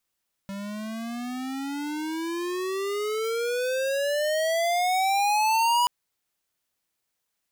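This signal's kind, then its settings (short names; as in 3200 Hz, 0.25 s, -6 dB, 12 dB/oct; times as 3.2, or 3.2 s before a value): gliding synth tone square, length 5.38 s, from 195 Hz, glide +28 st, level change +13.5 dB, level -21 dB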